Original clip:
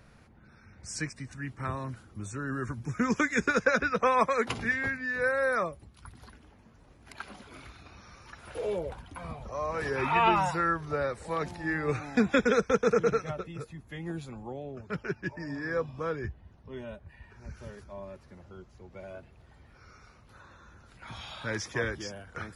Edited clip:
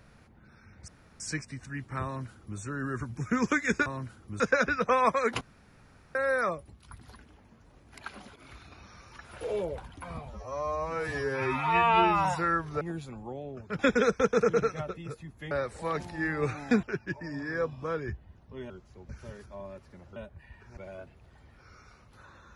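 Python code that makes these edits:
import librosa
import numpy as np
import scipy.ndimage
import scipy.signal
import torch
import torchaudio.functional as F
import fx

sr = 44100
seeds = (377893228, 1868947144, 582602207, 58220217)

y = fx.edit(x, sr, fx.insert_room_tone(at_s=0.88, length_s=0.32),
    fx.duplicate(start_s=1.73, length_s=0.54, to_s=3.54),
    fx.room_tone_fill(start_s=4.55, length_s=0.74),
    fx.fade_in_from(start_s=7.5, length_s=0.26, curve='qsin', floor_db=-12.0),
    fx.stretch_span(start_s=9.43, length_s=0.98, factor=2.0),
    fx.swap(start_s=10.97, length_s=1.32, other_s=14.01, other_length_s=0.98),
    fx.swap(start_s=16.86, length_s=0.61, other_s=18.54, other_length_s=0.39), tone=tone)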